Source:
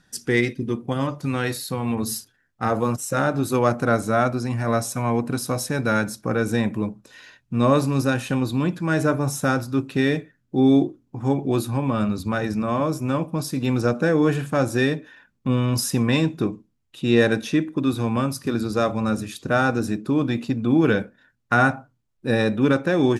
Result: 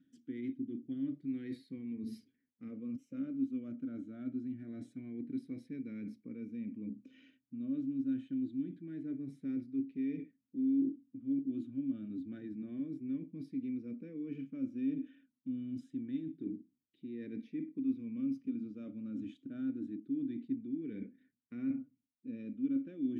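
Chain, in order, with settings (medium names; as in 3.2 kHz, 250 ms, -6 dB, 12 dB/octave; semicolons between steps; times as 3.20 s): drifting ripple filter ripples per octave 0.86, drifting +0.26 Hz, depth 7 dB; tilt shelf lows +8 dB, about 1.1 kHz; reverse; compression 12:1, threshold -26 dBFS, peak gain reduction 21 dB; reverse; vowel filter i; trim -1.5 dB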